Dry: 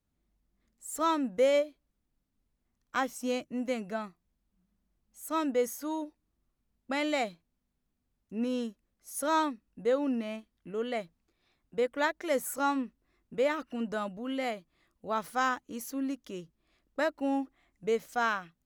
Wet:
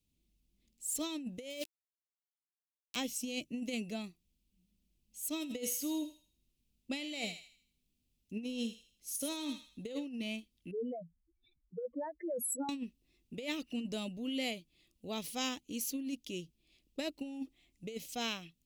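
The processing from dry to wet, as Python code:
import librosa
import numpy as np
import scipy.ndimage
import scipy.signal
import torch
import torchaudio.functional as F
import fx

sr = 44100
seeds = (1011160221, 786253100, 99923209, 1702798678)

y = fx.sample_gate(x, sr, floor_db=-35.5, at=(1.5, 2.96))
y = fx.echo_thinned(y, sr, ms=80, feedback_pct=41, hz=1100.0, wet_db=-9, at=(5.4, 10.05), fade=0.02)
y = fx.spec_expand(y, sr, power=3.9, at=(10.71, 12.69))
y = fx.curve_eq(y, sr, hz=(330.0, 1500.0, 2600.0, 6300.0), db=(0, -20, 7, 5))
y = fx.over_compress(y, sr, threshold_db=-34.0, ratio=-0.5)
y = y * 10.0 ** (-2.5 / 20.0)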